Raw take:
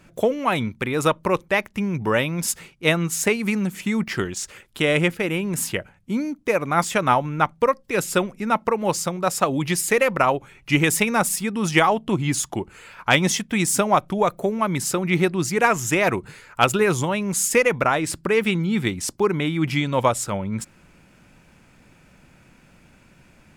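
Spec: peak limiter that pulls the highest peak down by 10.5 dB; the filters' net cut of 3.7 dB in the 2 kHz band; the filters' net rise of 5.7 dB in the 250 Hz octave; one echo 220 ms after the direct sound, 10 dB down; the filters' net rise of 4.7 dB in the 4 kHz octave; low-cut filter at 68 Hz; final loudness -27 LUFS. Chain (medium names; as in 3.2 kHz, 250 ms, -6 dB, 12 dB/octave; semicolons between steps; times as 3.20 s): high-pass 68 Hz; peaking EQ 250 Hz +8 dB; peaking EQ 2 kHz -7.5 dB; peaking EQ 4 kHz +9 dB; peak limiter -10 dBFS; delay 220 ms -10 dB; trim -6.5 dB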